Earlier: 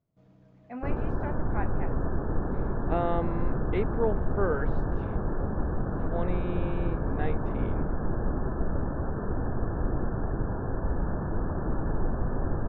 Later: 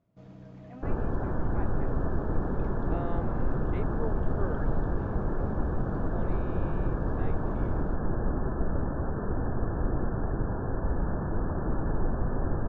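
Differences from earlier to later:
speech −9.5 dB
first sound +9.0 dB
reverb: on, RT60 2.2 s

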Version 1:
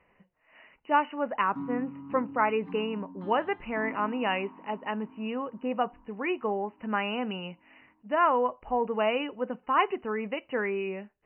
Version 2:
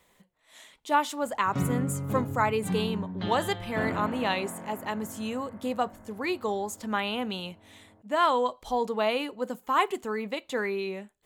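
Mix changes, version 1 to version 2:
speech: remove linear-phase brick-wall low-pass 3,000 Hz
background: remove pair of resonant band-passes 530 Hz, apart 1.8 octaves

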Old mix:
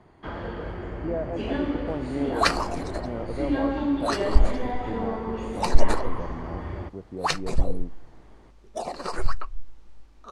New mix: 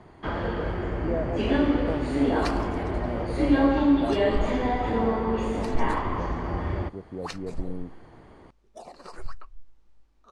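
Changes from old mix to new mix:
first sound +5.0 dB
second sound −12.0 dB

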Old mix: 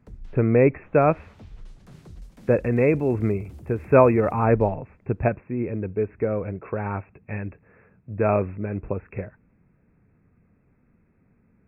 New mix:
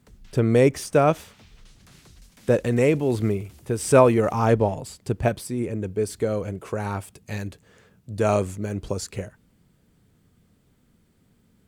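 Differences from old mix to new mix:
speech: remove linear-phase brick-wall low-pass 2,700 Hz
background: add tilt shelving filter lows −9.5 dB, about 1,200 Hz

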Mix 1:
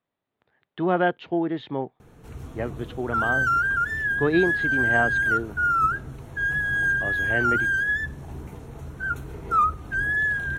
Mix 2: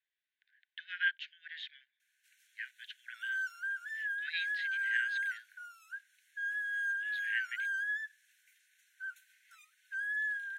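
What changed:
background −11.0 dB
master: add Chebyshev high-pass filter 1,500 Hz, order 10

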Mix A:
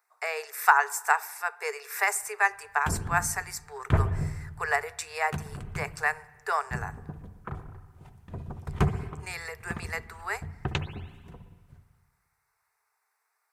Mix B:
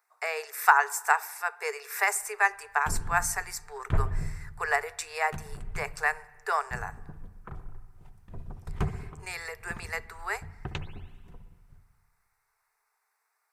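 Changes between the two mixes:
background −6.5 dB
master: remove high-pass filter 62 Hz

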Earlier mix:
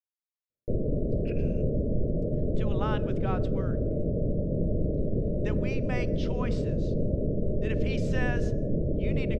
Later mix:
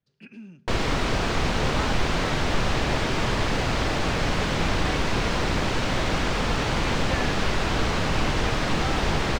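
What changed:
speech: entry −1.05 s
background: remove Chebyshev low-pass with heavy ripple 620 Hz, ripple 3 dB

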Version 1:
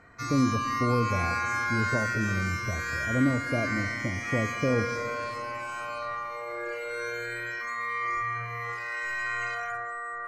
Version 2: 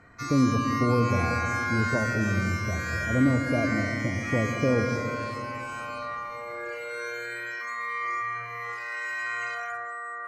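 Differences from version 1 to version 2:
speech: send +10.5 dB
background: add high-pass filter 310 Hz 6 dB per octave

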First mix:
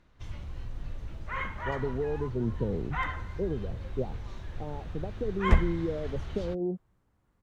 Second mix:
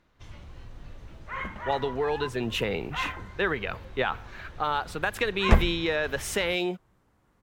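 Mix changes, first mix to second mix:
speech: remove Gaussian smoothing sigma 16 samples
second sound +8.5 dB
master: add low-shelf EQ 150 Hz −7.5 dB

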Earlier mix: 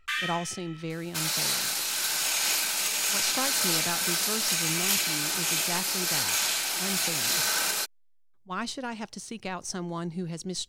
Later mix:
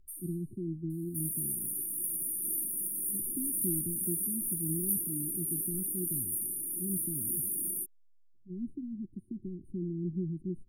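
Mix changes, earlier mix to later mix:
speech: add high-frequency loss of the air 290 metres
first sound +7.5 dB
master: add linear-phase brick-wall band-stop 390–8,900 Hz

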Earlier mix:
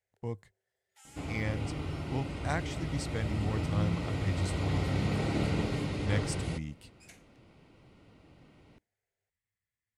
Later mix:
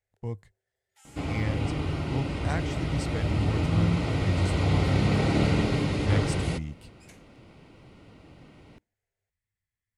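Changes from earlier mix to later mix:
speech: add low-shelf EQ 93 Hz +11.5 dB
second sound +7.0 dB

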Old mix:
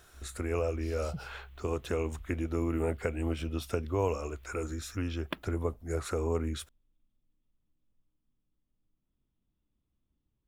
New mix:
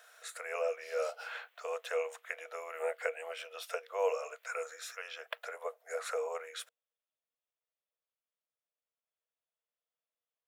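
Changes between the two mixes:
speech +3.5 dB
master: add Chebyshev high-pass with heavy ripple 460 Hz, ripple 6 dB

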